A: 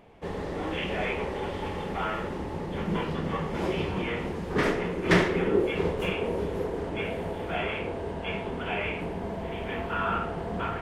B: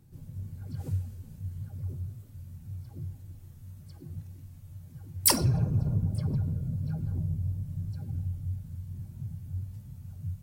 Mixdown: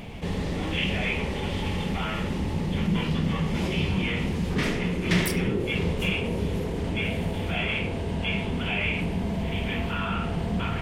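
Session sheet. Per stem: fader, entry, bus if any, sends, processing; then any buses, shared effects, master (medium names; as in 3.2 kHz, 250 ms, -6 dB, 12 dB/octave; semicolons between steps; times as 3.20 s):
+1.0 dB, 0.00 s, no send, level flattener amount 50%
-11.5 dB, 0.00 s, no send, none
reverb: none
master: high-order bell 740 Hz -10 dB 2.8 oct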